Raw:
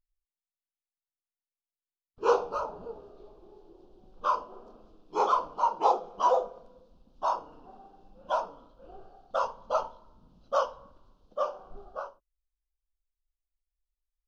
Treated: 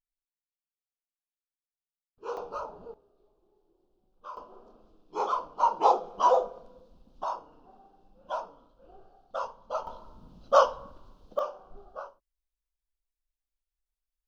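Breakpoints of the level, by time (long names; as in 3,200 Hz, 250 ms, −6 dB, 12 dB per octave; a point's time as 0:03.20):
−13 dB
from 0:02.37 −4 dB
from 0:02.94 −16 dB
from 0:04.37 −4 dB
from 0:05.60 +2 dB
from 0:07.24 −5 dB
from 0:09.87 +7 dB
from 0:11.39 −3 dB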